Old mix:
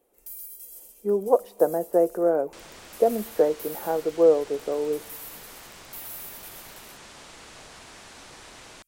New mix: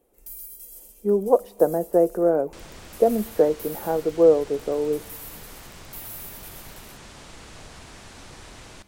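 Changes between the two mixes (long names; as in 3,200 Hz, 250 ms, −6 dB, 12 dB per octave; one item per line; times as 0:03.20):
first sound: send on
master: add low-shelf EQ 210 Hz +12 dB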